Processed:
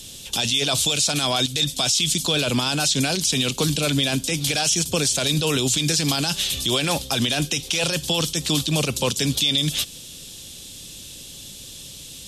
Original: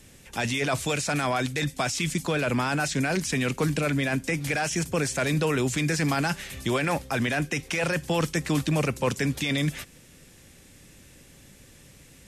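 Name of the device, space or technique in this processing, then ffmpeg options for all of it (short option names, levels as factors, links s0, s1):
over-bright horn tweeter: -af "highshelf=f=2600:t=q:w=3:g=9.5,alimiter=limit=0.15:level=0:latency=1:release=103,volume=1.88"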